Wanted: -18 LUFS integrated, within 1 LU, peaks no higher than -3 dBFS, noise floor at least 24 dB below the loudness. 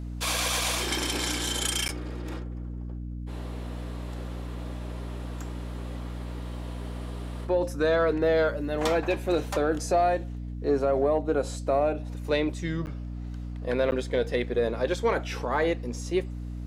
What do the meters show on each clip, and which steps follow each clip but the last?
dropouts 3; longest dropout 9.8 ms; hum 60 Hz; highest harmonic 300 Hz; hum level -33 dBFS; loudness -28.5 LUFS; peak level -14.5 dBFS; loudness target -18.0 LUFS
-> interpolate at 1.88/12.86/13.91 s, 9.8 ms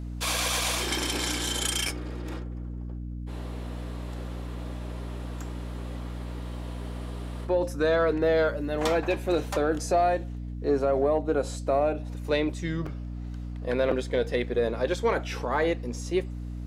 dropouts 0; hum 60 Hz; highest harmonic 300 Hz; hum level -33 dBFS
-> hum notches 60/120/180/240/300 Hz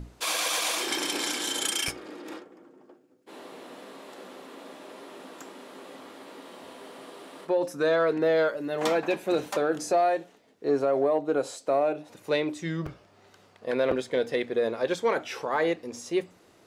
hum not found; loudness -27.5 LUFS; peak level -13.0 dBFS; loudness target -18.0 LUFS
-> trim +9.5 dB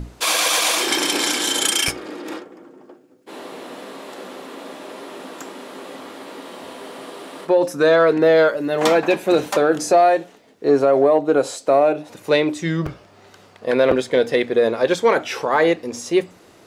loudness -18.0 LUFS; peak level -3.5 dBFS; noise floor -50 dBFS

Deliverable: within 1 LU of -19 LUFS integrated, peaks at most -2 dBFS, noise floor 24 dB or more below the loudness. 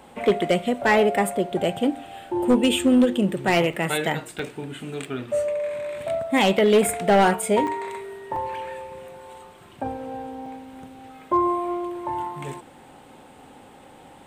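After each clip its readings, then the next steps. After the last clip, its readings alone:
clipped samples 0.5%; clipping level -11.5 dBFS; dropouts 5; longest dropout 3.4 ms; loudness -23.0 LUFS; peak level -11.5 dBFS; loudness target -19.0 LUFS
-> clip repair -11.5 dBFS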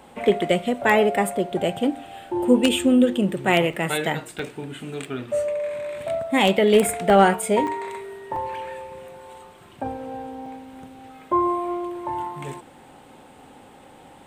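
clipped samples 0.0%; dropouts 5; longest dropout 3.4 ms
-> interpolate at 3.73/4.39/7.67/8.36/10.46 s, 3.4 ms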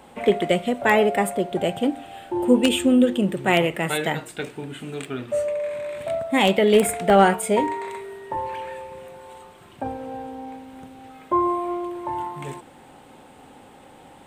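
dropouts 0; loudness -22.0 LUFS; peak level -2.5 dBFS; loudness target -19.0 LUFS
-> trim +3 dB; peak limiter -2 dBFS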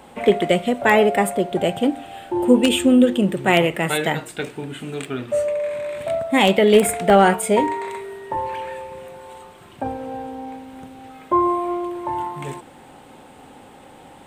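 loudness -19.5 LUFS; peak level -2.0 dBFS; noise floor -45 dBFS

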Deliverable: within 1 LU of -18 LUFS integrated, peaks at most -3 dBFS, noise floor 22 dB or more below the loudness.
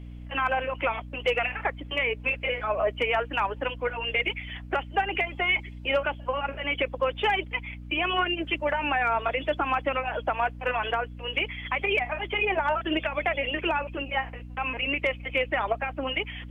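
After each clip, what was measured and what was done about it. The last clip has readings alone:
hum 60 Hz; highest harmonic 300 Hz; hum level -38 dBFS; loudness -27.5 LUFS; peak level -14.5 dBFS; loudness target -18.0 LUFS
-> de-hum 60 Hz, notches 5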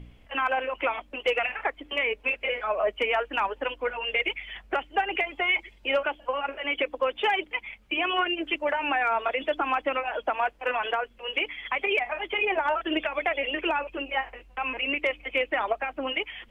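hum not found; loudness -27.5 LUFS; peak level -15.0 dBFS; loudness target -18.0 LUFS
-> trim +9.5 dB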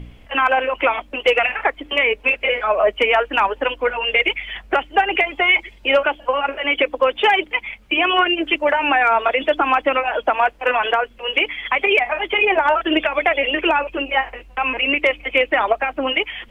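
loudness -18.0 LUFS; peak level -5.5 dBFS; noise floor -46 dBFS

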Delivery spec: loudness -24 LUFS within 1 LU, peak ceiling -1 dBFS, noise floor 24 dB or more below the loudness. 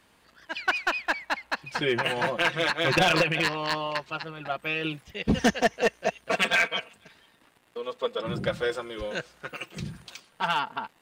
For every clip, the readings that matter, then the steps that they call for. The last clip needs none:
clipped samples 0.6%; clipping level -15.5 dBFS; loudness -27.0 LUFS; peak level -15.5 dBFS; loudness target -24.0 LUFS
-> clip repair -15.5 dBFS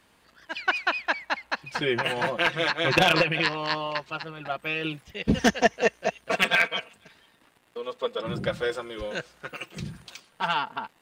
clipped samples 0.0%; loudness -26.0 LUFS; peak level -6.5 dBFS; loudness target -24.0 LUFS
-> trim +2 dB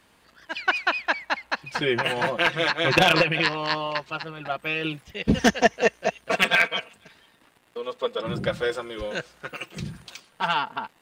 loudness -24.0 LUFS; peak level -4.5 dBFS; noise floor -60 dBFS

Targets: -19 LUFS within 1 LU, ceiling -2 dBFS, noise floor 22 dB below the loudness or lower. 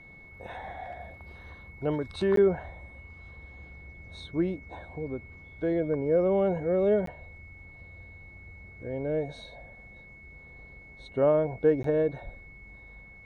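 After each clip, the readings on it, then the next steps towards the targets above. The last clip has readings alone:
dropouts 3; longest dropout 13 ms; steady tone 2.2 kHz; tone level -49 dBFS; loudness -28.0 LUFS; peak level -12.5 dBFS; loudness target -19.0 LUFS
-> interpolate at 2.36/7.06/11.83 s, 13 ms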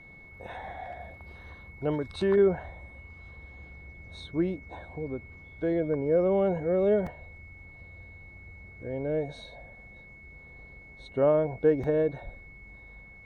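dropouts 0; steady tone 2.2 kHz; tone level -49 dBFS
-> band-stop 2.2 kHz, Q 30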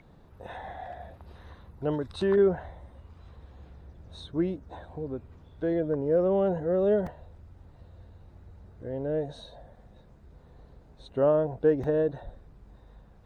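steady tone not found; loudness -28.0 LUFS; peak level -12.5 dBFS; loudness target -19.0 LUFS
-> trim +9 dB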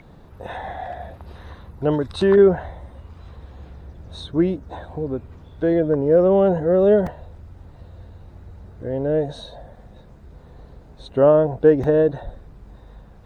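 loudness -19.0 LUFS; peak level -3.5 dBFS; noise floor -46 dBFS

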